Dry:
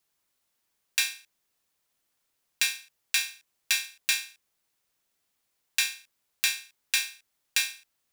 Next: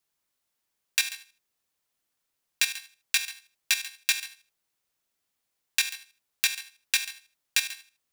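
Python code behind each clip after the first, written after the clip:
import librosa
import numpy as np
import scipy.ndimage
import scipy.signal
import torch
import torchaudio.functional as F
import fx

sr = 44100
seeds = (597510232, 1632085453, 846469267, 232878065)

y = fx.level_steps(x, sr, step_db=12)
y = y + 10.0 ** (-16.0 / 20.0) * np.pad(y, (int(139 * sr / 1000.0), 0))[:len(y)]
y = y * librosa.db_to_amplitude(3.0)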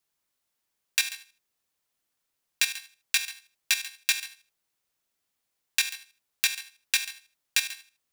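y = x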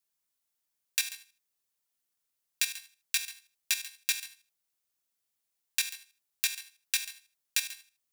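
y = fx.high_shelf(x, sr, hz=4700.0, db=8.0)
y = y * librosa.db_to_amplitude(-8.5)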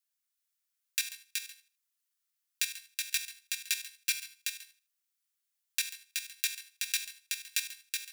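y = scipy.signal.sosfilt(scipy.signal.butter(4, 1200.0, 'highpass', fs=sr, output='sos'), x)
y = y + 10.0 ** (-4.0 / 20.0) * np.pad(y, (int(374 * sr / 1000.0), 0))[:len(y)]
y = y * librosa.db_to_amplitude(-2.5)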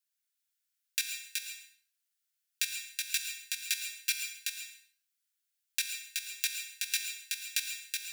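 y = scipy.signal.sosfilt(scipy.signal.ellip(4, 1.0, 40, 1400.0, 'highpass', fs=sr, output='sos'), x)
y = fx.rev_plate(y, sr, seeds[0], rt60_s=0.53, hf_ratio=0.8, predelay_ms=100, drr_db=6.5)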